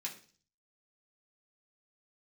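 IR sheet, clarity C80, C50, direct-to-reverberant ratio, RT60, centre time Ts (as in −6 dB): 15.5 dB, 11.0 dB, −3.5 dB, 0.40 s, 16 ms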